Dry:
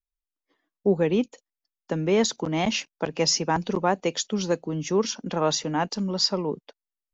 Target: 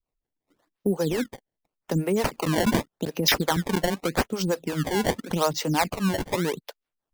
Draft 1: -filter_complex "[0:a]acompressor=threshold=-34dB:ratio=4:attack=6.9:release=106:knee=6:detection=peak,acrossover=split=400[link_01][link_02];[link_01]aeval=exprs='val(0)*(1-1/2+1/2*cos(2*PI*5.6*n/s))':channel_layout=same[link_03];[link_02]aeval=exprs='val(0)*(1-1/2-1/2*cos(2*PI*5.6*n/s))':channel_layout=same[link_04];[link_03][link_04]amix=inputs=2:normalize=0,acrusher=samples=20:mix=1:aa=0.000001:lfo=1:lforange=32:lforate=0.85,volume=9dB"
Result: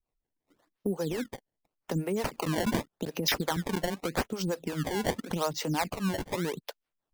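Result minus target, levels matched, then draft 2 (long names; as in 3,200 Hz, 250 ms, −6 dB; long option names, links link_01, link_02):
downward compressor: peak gain reduction +7 dB
-filter_complex "[0:a]acompressor=threshold=-25dB:ratio=4:attack=6.9:release=106:knee=6:detection=peak,acrossover=split=400[link_01][link_02];[link_01]aeval=exprs='val(0)*(1-1/2+1/2*cos(2*PI*5.6*n/s))':channel_layout=same[link_03];[link_02]aeval=exprs='val(0)*(1-1/2-1/2*cos(2*PI*5.6*n/s))':channel_layout=same[link_04];[link_03][link_04]amix=inputs=2:normalize=0,acrusher=samples=20:mix=1:aa=0.000001:lfo=1:lforange=32:lforate=0.85,volume=9dB"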